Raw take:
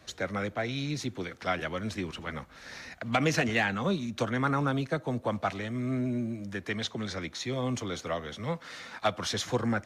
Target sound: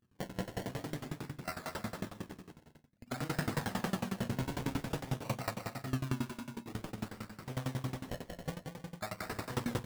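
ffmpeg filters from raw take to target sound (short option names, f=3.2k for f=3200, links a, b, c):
-filter_complex "[0:a]afftfilt=real='re':imag='-im':win_size=4096:overlap=0.75,highpass=120,agate=range=-38dB:threshold=-39dB:ratio=16:detection=peak,lowpass=f=1.7k:p=1,equalizer=f=420:w=0.67:g=-11,acrossover=split=420[a][b];[a]acompressor=mode=upward:threshold=-49dB:ratio=2.5[c];[b]alimiter=level_in=9dB:limit=-24dB:level=0:latency=1:release=67,volume=-9dB[d];[c][d]amix=inputs=2:normalize=0,acrusher=samples=25:mix=1:aa=0.000001:lfo=1:lforange=25:lforate=0.51,asplit=2[e][f];[f]adelay=16,volume=-13dB[g];[e][g]amix=inputs=2:normalize=0,asplit=2[h][i];[i]aecho=0:1:190|313.5|393.8|446|479.9:0.631|0.398|0.251|0.158|0.1[j];[h][j]amix=inputs=2:normalize=0,aeval=exprs='val(0)*pow(10,-22*if(lt(mod(11*n/s,1),2*abs(11)/1000),1-mod(11*n/s,1)/(2*abs(11)/1000),(mod(11*n/s,1)-2*abs(11)/1000)/(1-2*abs(11)/1000))/20)':c=same,volume=9dB"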